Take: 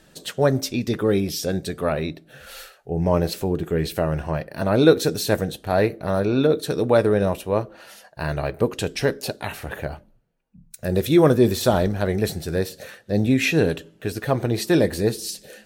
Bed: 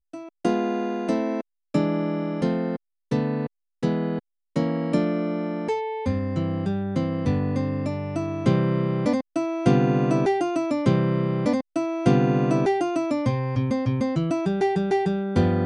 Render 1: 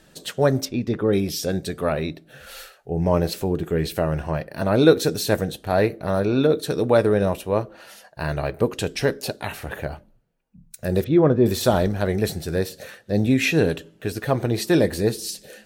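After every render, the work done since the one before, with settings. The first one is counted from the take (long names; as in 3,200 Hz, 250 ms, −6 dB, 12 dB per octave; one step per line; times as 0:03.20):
0:00.65–0:01.13: low-pass filter 1,600 Hz 6 dB per octave
0:11.04–0:11.46: head-to-tape spacing loss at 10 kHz 36 dB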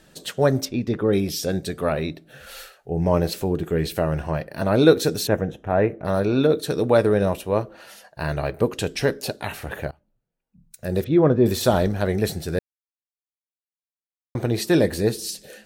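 0:05.27–0:06.05: moving average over 10 samples
0:09.91–0:11.27: fade in, from −23 dB
0:12.59–0:14.35: silence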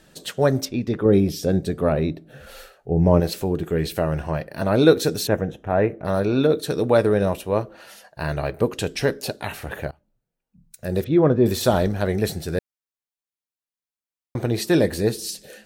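0:01.05–0:03.20: tilt shelving filter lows +5.5 dB, about 930 Hz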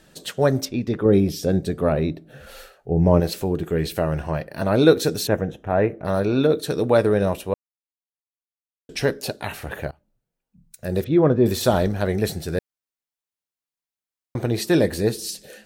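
0:07.54–0:08.89: silence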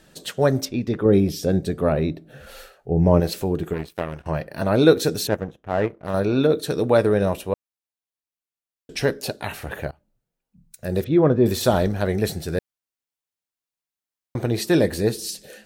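0:03.73–0:04.26: power curve on the samples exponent 2
0:05.29–0:06.14: power curve on the samples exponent 1.4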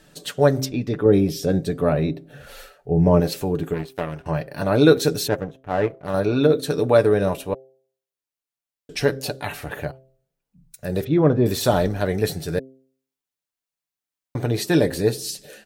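comb filter 6.9 ms, depth 39%
hum removal 132 Hz, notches 6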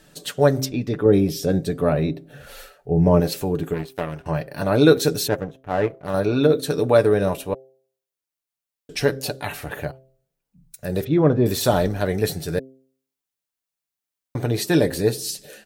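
high-shelf EQ 8,100 Hz +3.5 dB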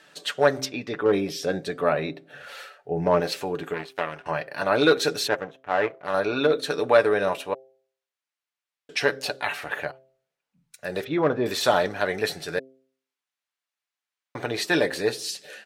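in parallel at −3 dB: hard clipping −9.5 dBFS, distortion −18 dB
on the sum: resonant band-pass 1,800 Hz, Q 0.65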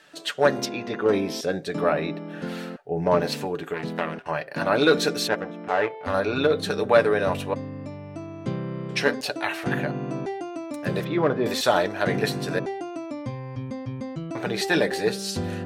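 mix in bed −9 dB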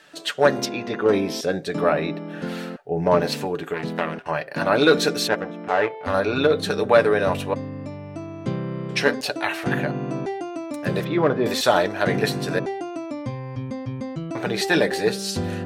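level +2.5 dB
brickwall limiter −2 dBFS, peak gain reduction 1 dB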